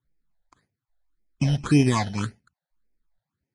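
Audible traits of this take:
aliases and images of a low sample rate 2,800 Hz, jitter 0%
phaser sweep stages 8, 1.8 Hz, lowest notch 320–1,200 Hz
Ogg Vorbis

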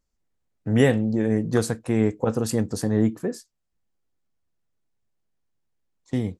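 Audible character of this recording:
background noise floor −77 dBFS
spectral slope −7.0 dB per octave

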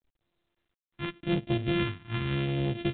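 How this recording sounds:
a buzz of ramps at a fixed pitch in blocks of 128 samples
phaser sweep stages 2, 0.84 Hz, lowest notch 520–1,100 Hz
G.726

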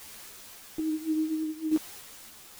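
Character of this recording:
a quantiser's noise floor 8 bits, dither triangular
sample-and-hold tremolo
a shimmering, thickened sound

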